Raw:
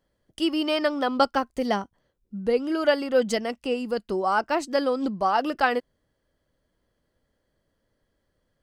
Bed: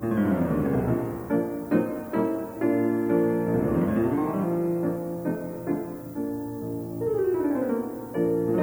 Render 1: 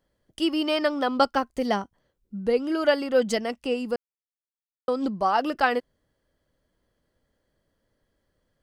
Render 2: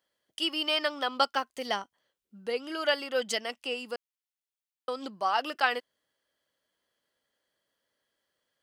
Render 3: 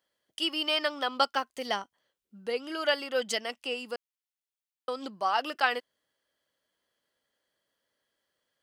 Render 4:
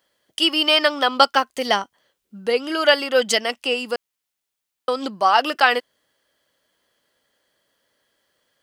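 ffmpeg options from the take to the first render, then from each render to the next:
ffmpeg -i in.wav -filter_complex "[0:a]asplit=3[link_01][link_02][link_03];[link_01]atrim=end=3.96,asetpts=PTS-STARTPTS,afade=type=out:start_time=3.956:duration=0.004:curve=hsin[link_04];[link_02]atrim=start=3.96:end=4.88,asetpts=PTS-STARTPTS,volume=0[link_05];[link_03]atrim=start=4.88,asetpts=PTS-STARTPTS,afade=type=in:duration=0.004:curve=hsin[link_06];[link_04][link_05][link_06]concat=n=3:v=0:a=1" out.wav
ffmpeg -i in.wav -af "highpass=frequency=1300:poles=1,equalizer=frequency=3100:width_type=o:width=0.48:gain=4" out.wav
ffmpeg -i in.wav -af anull out.wav
ffmpeg -i in.wav -af "volume=11.5dB,alimiter=limit=-1dB:level=0:latency=1" out.wav

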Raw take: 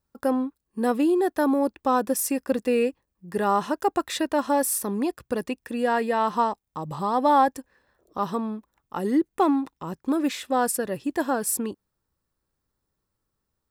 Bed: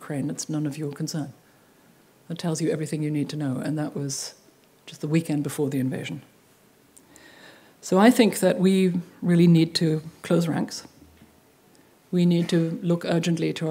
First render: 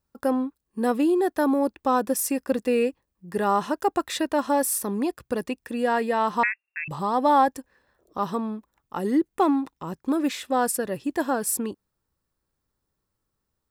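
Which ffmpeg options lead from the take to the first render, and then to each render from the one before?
ffmpeg -i in.wav -filter_complex "[0:a]asettb=1/sr,asplit=3[link_01][link_02][link_03];[link_01]atrim=end=6.434[link_04];[link_02]atrim=start=6.43:end=6.88,asetpts=PTS-STARTPTS,afade=type=in:duration=0.004:curve=qsin,afade=type=out:start_time=0.446:duration=0.004:curve=qsin,lowpass=frequency=2400:width_type=q:width=0.5098,lowpass=frequency=2400:width_type=q:width=0.6013,lowpass=frequency=2400:width_type=q:width=0.9,lowpass=frequency=2400:width_type=q:width=2.563,afreqshift=-2800[link_05];[link_03]atrim=start=6.876[link_06];[link_04][link_05]acrossfade=duration=0.004:curve1=hsin:curve2=qsin[link_07];[link_07][link_06]acrossfade=duration=0.004:curve1=qsin:curve2=hsin" out.wav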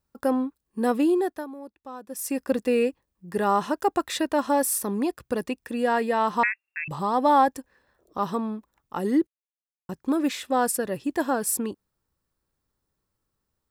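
ffmpeg -i in.wav -filter_complex "[0:a]asplit=5[link_01][link_02][link_03][link_04][link_05];[link_01]atrim=end=1.47,asetpts=PTS-STARTPTS,afade=type=out:start_time=1.14:duration=0.33:silence=0.133352[link_06];[link_02]atrim=start=1.47:end=2.08,asetpts=PTS-STARTPTS,volume=-17.5dB[link_07];[link_03]atrim=start=2.08:end=9.27,asetpts=PTS-STARTPTS,afade=type=in:duration=0.33:silence=0.133352,afade=type=out:start_time=7.186:duration=0.004:curve=hsin[link_08];[link_04]atrim=start=9.27:end=9.89,asetpts=PTS-STARTPTS,volume=0[link_09];[link_05]atrim=start=9.89,asetpts=PTS-STARTPTS,afade=type=in:duration=0.004:curve=hsin[link_10];[link_06][link_07][link_08][link_09][link_10]concat=n=5:v=0:a=1" out.wav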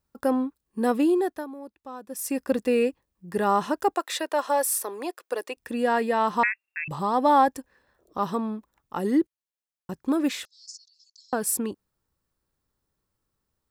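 ffmpeg -i in.wav -filter_complex "[0:a]asettb=1/sr,asplit=3[link_01][link_02][link_03];[link_01]atrim=end=3.944[link_04];[link_02]atrim=start=3.94:end=5.57,asetpts=PTS-STARTPTS,afade=type=in:duration=0.004:curve=qsin,afade=type=out:start_time=1.626:duration=0.004:curve=qsin,highpass=frequency=400:width=0.5412,highpass=frequency=400:width=1.3066[link_05];[link_03]atrim=start=5.566[link_06];[link_04][link_05]acrossfade=duration=0.004:curve1=hsin:curve2=qsin[link_07];[link_07][link_06]acrossfade=duration=0.004:curve1=qsin:curve2=hsin,asettb=1/sr,asplit=3[link_08][link_09][link_10];[link_08]atrim=end=10.454[link_11];[link_09]atrim=start=10.45:end=11.33,asetpts=PTS-STARTPTS,afade=type=in:duration=0.004:curve=qsin,afade=type=out:start_time=0.876:duration=0.004:curve=qsin,asuperpass=centerf=5400:order=8:qfactor=2.2[link_12];[link_10]atrim=start=11.326[link_13];[link_11][link_12]acrossfade=duration=0.004:curve1=hsin:curve2=qsin[link_14];[link_14][link_13]acrossfade=duration=0.004:curve1=qsin:curve2=hsin" out.wav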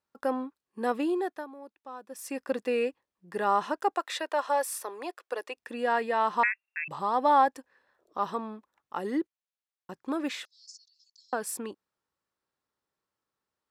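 ffmpeg -i in.wav -af "highpass=frequency=690:poles=1,aemphasis=mode=reproduction:type=50kf" out.wav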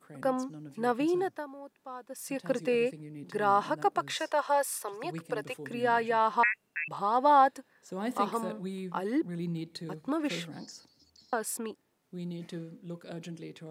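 ffmpeg -i in.wav -i bed.wav -filter_complex "[1:a]volume=-18.5dB[link_01];[0:a][link_01]amix=inputs=2:normalize=0" out.wav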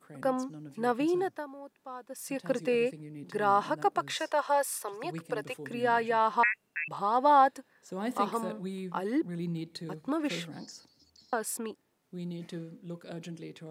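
ffmpeg -i in.wav -af anull out.wav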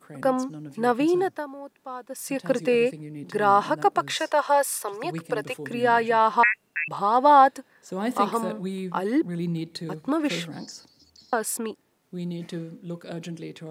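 ffmpeg -i in.wav -af "volume=6.5dB" out.wav

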